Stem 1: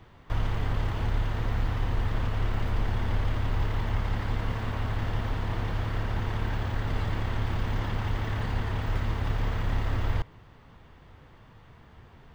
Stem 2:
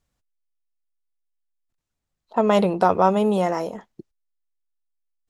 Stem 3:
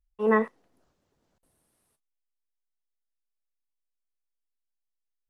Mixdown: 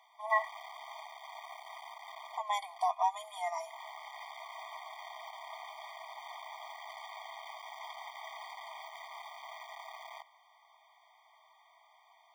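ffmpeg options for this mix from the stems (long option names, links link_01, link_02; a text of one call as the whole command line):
ffmpeg -i stem1.wav -i stem2.wav -i stem3.wav -filter_complex "[0:a]asoftclip=type=tanh:threshold=-25dB,volume=-3dB[link_01];[1:a]highpass=920,asplit=2[link_02][link_03];[link_03]adelay=3,afreqshift=-0.49[link_04];[link_02][link_04]amix=inputs=2:normalize=1,volume=-4dB,asplit=2[link_05][link_06];[2:a]volume=-2dB[link_07];[link_06]apad=whole_len=544565[link_08];[link_01][link_08]sidechaincompress=threshold=-45dB:ratio=8:attack=16:release=205[link_09];[link_09][link_05][link_07]amix=inputs=3:normalize=0,highshelf=frequency=4600:gain=5,afftfilt=real='re*eq(mod(floor(b*sr/1024/620),2),1)':imag='im*eq(mod(floor(b*sr/1024/620),2),1)':win_size=1024:overlap=0.75" out.wav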